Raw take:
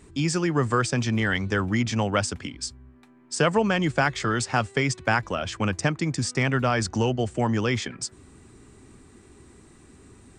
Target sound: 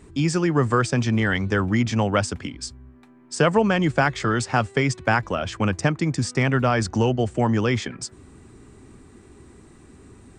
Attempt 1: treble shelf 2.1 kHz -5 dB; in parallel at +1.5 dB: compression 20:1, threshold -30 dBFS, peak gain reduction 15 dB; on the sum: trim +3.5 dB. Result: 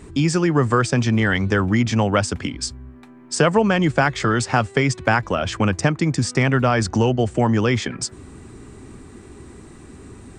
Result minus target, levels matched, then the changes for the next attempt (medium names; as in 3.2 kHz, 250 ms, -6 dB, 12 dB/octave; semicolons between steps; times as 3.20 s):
compression: peak gain reduction +15 dB
remove: compression 20:1, threshold -30 dBFS, peak gain reduction 15 dB